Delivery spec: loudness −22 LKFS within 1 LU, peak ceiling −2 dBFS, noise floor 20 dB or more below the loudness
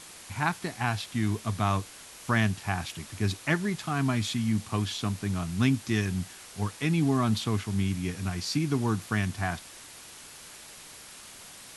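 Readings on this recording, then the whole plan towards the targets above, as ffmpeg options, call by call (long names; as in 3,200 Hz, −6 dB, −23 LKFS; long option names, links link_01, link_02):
background noise floor −48 dBFS; target noise floor −50 dBFS; integrated loudness −29.5 LKFS; sample peak −11.5 dBFS; target loudness −22.0 LKFS
→ -af "afftdn=noise_reduction=6:noise_floor=-48"
-af "volume=7.5dB"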